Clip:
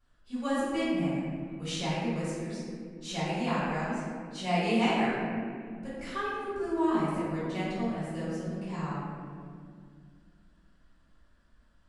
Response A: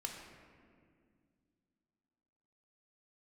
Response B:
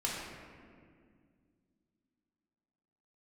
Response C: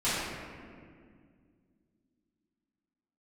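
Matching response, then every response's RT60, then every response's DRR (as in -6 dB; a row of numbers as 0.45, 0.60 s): C; 2.1, 2.1, 2.1 s; 0.5, -5.0, -14.5 dB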